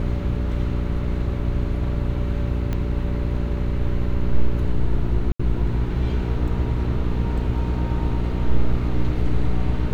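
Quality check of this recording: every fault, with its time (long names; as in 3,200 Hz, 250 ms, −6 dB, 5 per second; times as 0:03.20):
mains hum 60 Hz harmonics 7 −24 dBFS
0:02.73: click −14 dBFS
0:05.32–0:05.39: drop-out 75 ms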